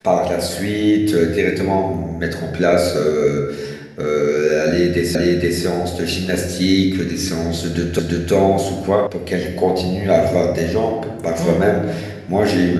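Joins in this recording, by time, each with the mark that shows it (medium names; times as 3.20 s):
5.15 s: repeat of the last 0.47 s
7.99 s: repeat of the last 0.34 s
9.07 s: sound stops dead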